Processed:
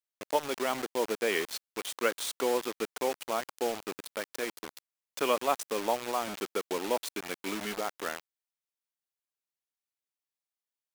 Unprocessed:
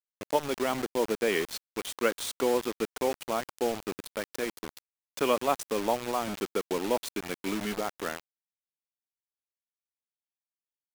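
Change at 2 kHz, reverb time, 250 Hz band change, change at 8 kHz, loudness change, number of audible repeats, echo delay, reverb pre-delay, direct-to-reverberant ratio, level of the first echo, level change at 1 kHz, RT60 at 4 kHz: 0.0 dB, no reverb, -5.0 dB, 0.0 dB, -2.0 dB, no echo, no echo, no reverb, no reverb, no echo, -1.0 dB, no reverb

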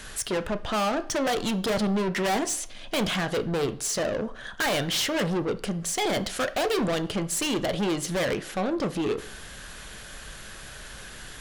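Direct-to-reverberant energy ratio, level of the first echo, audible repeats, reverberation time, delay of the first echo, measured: 10.0 dB, no echo, no echo, 0.55 s, no echo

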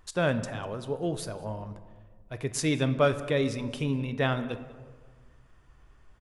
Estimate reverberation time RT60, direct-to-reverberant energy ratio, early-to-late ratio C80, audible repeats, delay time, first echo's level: 1.6 s, 10.0 dB, 14.0 dB, 1, 197 ms, -23.0 dB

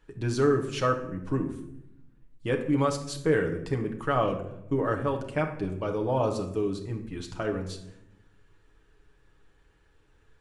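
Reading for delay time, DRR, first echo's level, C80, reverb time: no echo, 2.0 dB, no echo, 12.5 dB, 0.80 s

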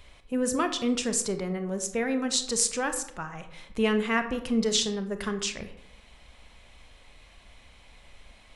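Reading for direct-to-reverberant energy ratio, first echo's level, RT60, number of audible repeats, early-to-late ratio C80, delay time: 8.0 dB, no echo, 0.75 s, no echo, 13.5 dB, no echo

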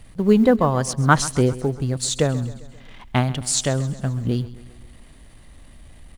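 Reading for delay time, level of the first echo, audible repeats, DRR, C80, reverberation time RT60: 133 ms, -17.5 dB, 4, no reverb, no reverb, no reverb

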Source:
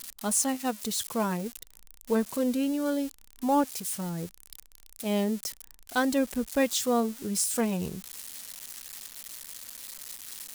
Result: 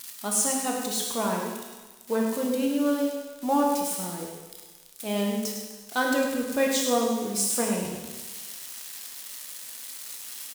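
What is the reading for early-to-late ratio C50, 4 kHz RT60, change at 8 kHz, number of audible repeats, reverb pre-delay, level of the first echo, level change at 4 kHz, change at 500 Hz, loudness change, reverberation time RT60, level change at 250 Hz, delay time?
2.0 dB, 1.3 s, +3.0 dB, 1, 14 ms, -7.0 dB, +3.5 dB, +3.0 dB, +2.5 dB, 1.3 s, +1.0 dB, 103 ms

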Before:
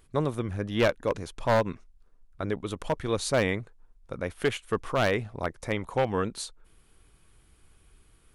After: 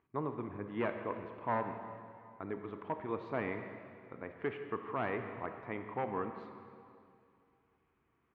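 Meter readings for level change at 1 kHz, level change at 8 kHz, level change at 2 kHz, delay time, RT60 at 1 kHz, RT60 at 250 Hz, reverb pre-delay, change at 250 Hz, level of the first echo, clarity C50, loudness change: -6.5 dB, under -40 dB, -11.0 dB, 170 ms, 2.4 s, 2.5 s, 25 ms, -9.0 dB, -18.5 dB, 7.0 dB, -10.5 dB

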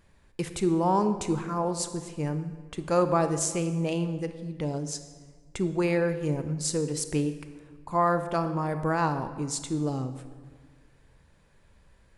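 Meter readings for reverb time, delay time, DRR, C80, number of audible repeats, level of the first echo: 1.6 s, no echo, 9.5 dB, 12.0 dB, no echo, no echo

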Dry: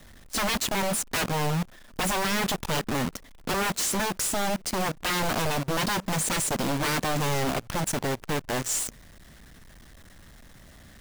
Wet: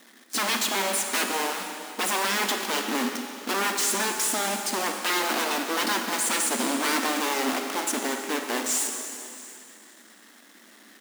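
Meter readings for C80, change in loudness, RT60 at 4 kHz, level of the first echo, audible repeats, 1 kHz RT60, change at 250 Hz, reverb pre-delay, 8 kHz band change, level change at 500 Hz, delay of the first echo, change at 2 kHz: 5.0 dB, +1.5 dB, 2.5 s, -21.0 dB, 1, 2.6 s, -0.5 dB, 26 ms, +3.0 dB, -0.5 dB, 687 ms, +3.0 dB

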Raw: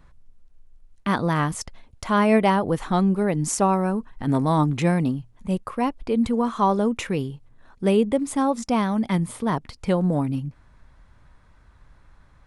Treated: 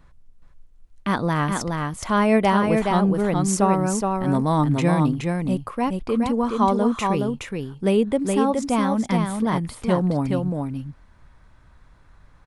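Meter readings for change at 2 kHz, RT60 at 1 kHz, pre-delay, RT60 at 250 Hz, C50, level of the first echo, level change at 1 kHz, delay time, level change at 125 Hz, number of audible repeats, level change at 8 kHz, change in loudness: +1.5 dB, no reverb, no reverb, no reverb, no reverb, -4.0 dB, +1.5 dB, 420 ms, +1.5 dB, 1, +1.5 dB, +1.0 dB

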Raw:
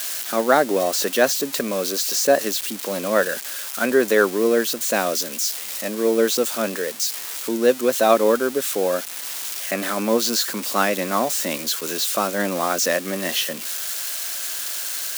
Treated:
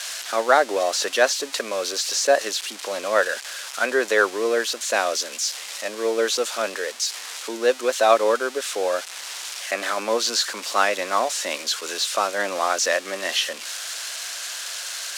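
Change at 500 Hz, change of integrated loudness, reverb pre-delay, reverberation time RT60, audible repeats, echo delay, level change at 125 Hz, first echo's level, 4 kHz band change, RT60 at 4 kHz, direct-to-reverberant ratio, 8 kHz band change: -2.0 dB, -2.0 dB, no reverb, no reverb, no echo, no echo, no reading, no echo, +1.0 dB, no reverb, no reverb, -2.0 dB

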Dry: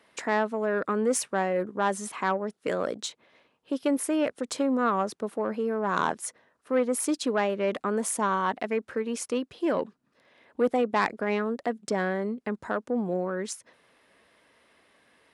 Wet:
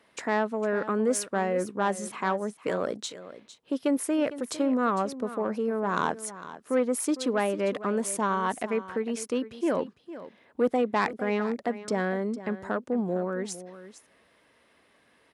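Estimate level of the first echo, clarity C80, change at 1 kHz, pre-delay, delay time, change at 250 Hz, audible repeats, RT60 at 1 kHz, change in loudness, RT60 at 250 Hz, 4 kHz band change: -14.5 dB, no reverb, -1.0 dB, no reverb, 455 ms, +0.5 dB, 1, no reverb, -0.5 dB, no reverb, -1.5 dB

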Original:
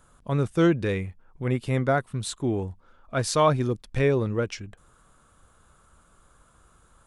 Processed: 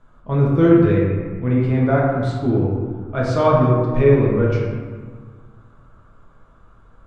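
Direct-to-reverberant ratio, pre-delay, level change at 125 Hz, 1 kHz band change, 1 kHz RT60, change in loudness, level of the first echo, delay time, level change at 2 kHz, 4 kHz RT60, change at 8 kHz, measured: -5.0 dB, 5 ms, +9.5 dB, +5.0 dB, 1.7 s, +8.0 dB, no echo, no echo, +3.0 dB, 0.90 s, under -10 dB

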